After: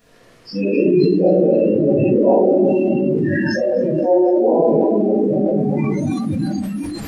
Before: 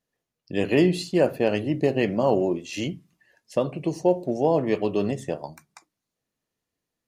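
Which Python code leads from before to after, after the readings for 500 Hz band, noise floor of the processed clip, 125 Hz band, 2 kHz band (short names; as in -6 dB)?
+9.5 dB, -48 dBFS, +8.0 dB, +5.0 dB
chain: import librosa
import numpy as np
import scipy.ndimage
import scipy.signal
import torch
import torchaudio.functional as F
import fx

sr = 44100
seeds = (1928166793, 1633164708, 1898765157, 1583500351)

p1 = fx.delta_mod(x, sr, bps=64000, step_db=-26.0)
p2 = fx.low_shelf(p1, sr, hz=320.0, db=-2.5)
p3 = fx.room_shoebox(p2, sr, seeds[0], volume_m3=180.0, walls='hard', distance_m=1.8)
p4 = fx.over_compress(p3, sr, threshold_db=-19.0, ratio=-1.0)
p5 = p3 + F.gain(torch.from_numpy(p4), 0.0).numpy()
p6 = fx.high_shelf(p5, sr, hz=3900.0, db=-10.0)
p7 = fx.noise_reduce_blind(p6, sr, reduce_db=29)
p8 = fx.notch(p7, sr, hz=860.0, q=15.0)
p9 = p8 + fx.echo_feedback(p8, sr, ms=258, feedback_pct=52, wet_db=-23, dry=0)
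p10 = fx.sustainer(p9, sr, db_per_s=21.0)
y = F.gain(torch.from_numpy(p10), -6.0).numpy()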